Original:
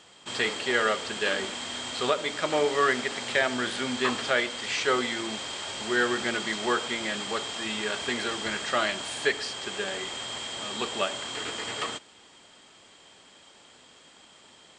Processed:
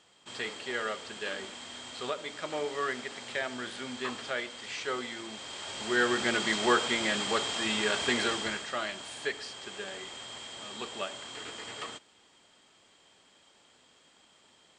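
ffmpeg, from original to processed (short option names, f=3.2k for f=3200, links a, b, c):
-af "volume=1.5dB,afade=t=in:st=5.33:d=1.2:silence=0.298538,afade=t=out:st=8.24:d=0.44:silence=0.334965"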